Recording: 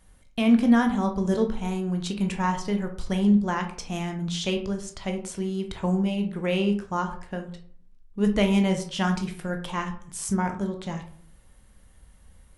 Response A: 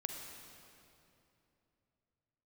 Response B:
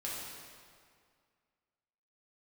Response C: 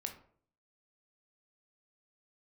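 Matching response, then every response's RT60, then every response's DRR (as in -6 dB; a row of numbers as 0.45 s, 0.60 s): C; 2.9 s, 2.1 s, 0.55 s; 3.0 dB, -6.5 dB, 4.0 dB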